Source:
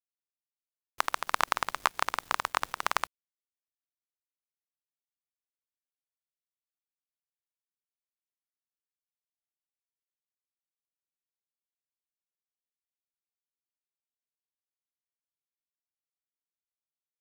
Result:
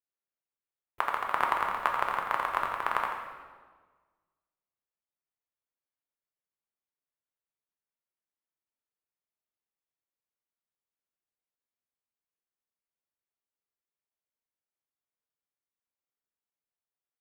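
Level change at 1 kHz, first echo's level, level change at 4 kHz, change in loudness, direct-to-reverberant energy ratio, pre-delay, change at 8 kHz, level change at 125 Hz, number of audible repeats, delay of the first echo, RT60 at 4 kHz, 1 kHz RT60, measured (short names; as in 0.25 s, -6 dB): +2.5 dB, -7.5 dB, -8.0 dB, +1.0 dB, 0.0 dB, 3 ms, under -10 dB, +0.5 dB, 1, 86 ms, 1.2 s, 1.4 s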